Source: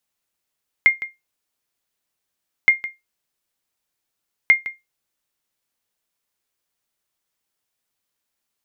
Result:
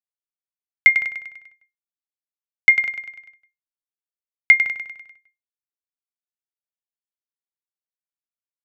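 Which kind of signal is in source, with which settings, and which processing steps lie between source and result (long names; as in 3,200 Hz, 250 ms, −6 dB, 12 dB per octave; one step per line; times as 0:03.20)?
ping with an echo 2,120 Hz, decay 0.19 s, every 1.82 s, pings 3, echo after 0.16 s, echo −15.5 dB −4 dBFS
downward expander −43 dBFS
comb filter 1.4 ms, depth 49%
repeating echo 99 ms, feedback 53%, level −9 dB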